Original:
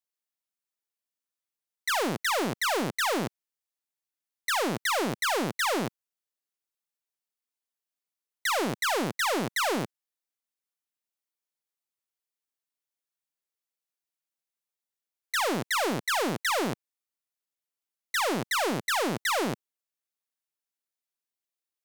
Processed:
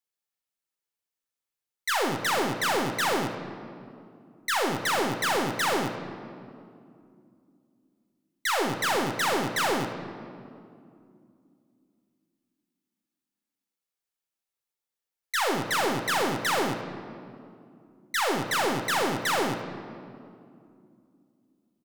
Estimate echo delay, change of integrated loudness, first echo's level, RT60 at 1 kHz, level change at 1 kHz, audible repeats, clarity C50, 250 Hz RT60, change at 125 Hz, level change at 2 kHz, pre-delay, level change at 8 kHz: 77 ms, +1.0 dB, -14.0 dB, 2.2 s, +2.0 dB, 1, 7.0 dB, 3.8 s, +1.5 dB, +1.0 dB, 8 ms, +0.5 dB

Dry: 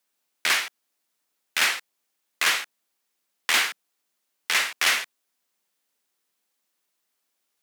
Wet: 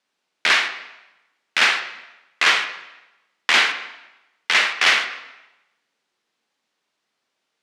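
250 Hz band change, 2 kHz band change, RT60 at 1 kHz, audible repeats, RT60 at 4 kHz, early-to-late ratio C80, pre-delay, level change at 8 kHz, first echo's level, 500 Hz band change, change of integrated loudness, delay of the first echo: +6.5 dB, +6.5 dB, 1.0 s, none, 0.85 s, 11.5 dB, 8 ms, -2.5 dB, none, +7.0 dB, +5.0 dB, none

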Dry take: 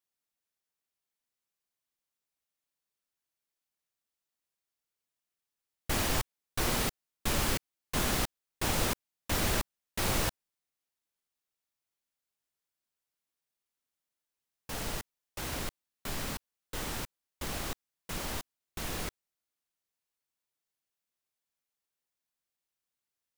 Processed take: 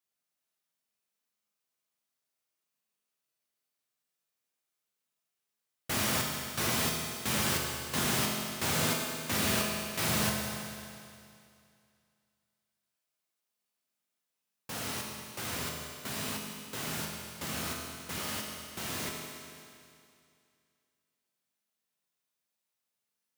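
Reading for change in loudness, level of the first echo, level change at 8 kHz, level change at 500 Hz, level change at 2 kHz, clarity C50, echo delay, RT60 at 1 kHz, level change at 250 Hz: +2.0 dB, none, +3.0 dB, +0.5 dB, +2.5 dB, 2.0 dB, none, 2.4 s, +2.5 dB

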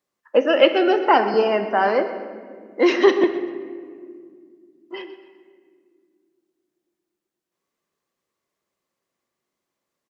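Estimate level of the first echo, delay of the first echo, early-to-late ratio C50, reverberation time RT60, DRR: -14.5 dB, 0.128 s, 9.0 dB, 2.1 s, 7.5 dB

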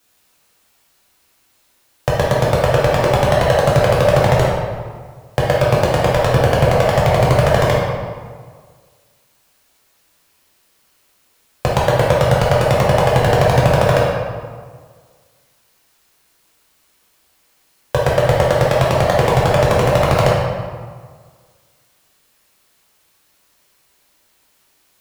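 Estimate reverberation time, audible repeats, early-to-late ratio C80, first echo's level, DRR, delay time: 1.7 s, none, 2.0 dB, none, -5.5 dB, none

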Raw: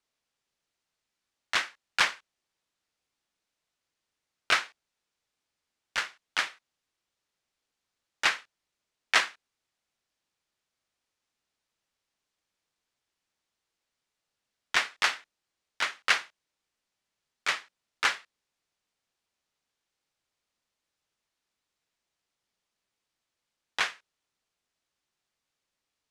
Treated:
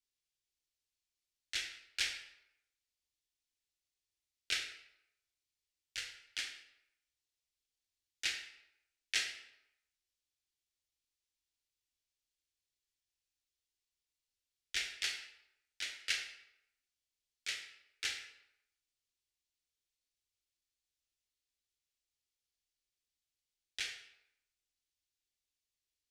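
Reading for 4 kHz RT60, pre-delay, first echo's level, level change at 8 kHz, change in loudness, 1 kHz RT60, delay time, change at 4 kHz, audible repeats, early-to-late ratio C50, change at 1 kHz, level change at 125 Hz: 0.60 s, 22 ms, none, -5.0 dB, -10.5 dB, 0.85 s, none, -7.0 dB, none, 6.5 dB, -25.5 dB, n/a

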